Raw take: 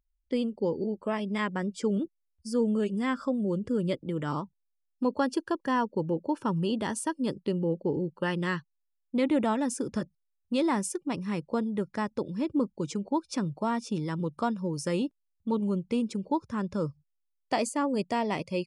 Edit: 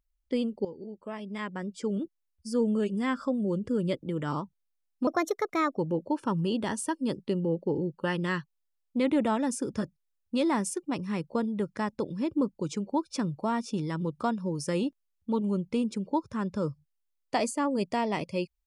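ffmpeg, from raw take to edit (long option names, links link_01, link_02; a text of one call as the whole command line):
ffmpeg -i in.wav -filter_complex "[0:a]asplit=4[link_01][link_02][link_03][link_04];[link_01]atrim=end=0.65,asetpts=PTS-STARTPTS,afade=type=out:start_time=0.646:duration=0.004:curve=hsin:silence=0.211349[link_05];[link_02]atrim=start=0.65:end=5.074,asetpts=PTS-STARTPTS,afade=type=in:duration=1.95:silence=0.211349[link_06];[link_03]atrim=start=5.07:end=5.96,asetpts=PTS-STARTPTS,asetrate=55566,aresample=44100[link_07];[link_04]atrim=start=5.956[link_08];[link_05][link_06]concat=n=2:v=0:a=1[link_09];[link_09][link_07]acrossfade=duration=0.004:curve1=hsin:curve2=hsin[link_10];[link_10][link_08]acrossfade=duration=0.004:curve1=hsin:curve2=hsin" out.wav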